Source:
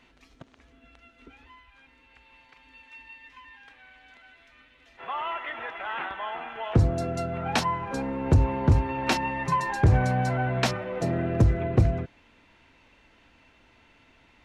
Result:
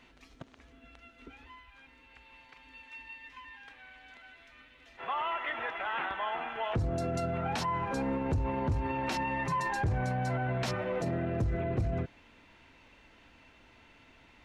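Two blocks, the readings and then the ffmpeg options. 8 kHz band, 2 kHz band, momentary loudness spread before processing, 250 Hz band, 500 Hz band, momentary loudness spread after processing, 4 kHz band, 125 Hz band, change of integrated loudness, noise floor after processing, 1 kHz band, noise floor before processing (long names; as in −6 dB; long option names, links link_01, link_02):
−7.5 dB, −4.0 dB, 12 LU, −6.0 dB, −4.5 dB, 20 LU, −6.5 dB, −9.0 dB, −6.5 dB, −60 dBFS, −4.0 dB, −60 dBFS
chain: -af "alimiter=level_in=0.5dB:limit=-24dB:level=0:latency=1:release=46,volume=-0.5dB"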